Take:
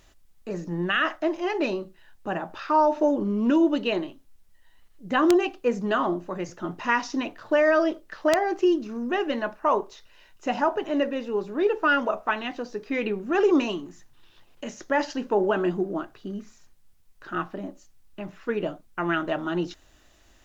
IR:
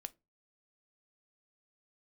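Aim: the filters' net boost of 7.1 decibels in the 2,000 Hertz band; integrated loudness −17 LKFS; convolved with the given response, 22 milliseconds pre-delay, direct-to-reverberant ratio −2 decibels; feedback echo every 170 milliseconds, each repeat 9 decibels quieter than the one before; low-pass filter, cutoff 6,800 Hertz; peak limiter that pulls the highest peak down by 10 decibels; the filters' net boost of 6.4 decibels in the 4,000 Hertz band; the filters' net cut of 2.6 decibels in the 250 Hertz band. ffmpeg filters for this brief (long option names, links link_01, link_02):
-filter_complex "[0:a]lowpass=6800,equalizer=frequency=250:width_type=o:gain=-4,equalizer=frequency=2000:width_type=o:gain=8.5,equalizer=frequency=4000:width_type=o:gain=5,alimiter=limit=-13.5dB:level=0:latency=1,aecho=1:1:170|340|510|680:0.355|0.124|0.0435|0.0152,asplit=2[link_01][link_02];[1:a]atrim=start_sample=2205,adelay=22[link_03];[link_02][link_03]afir=irnorm=-1:irlink=0,volume=6.5dB[link_04];[link_01][link_04]amix=inputs=2:normalize=0,volume=4dB"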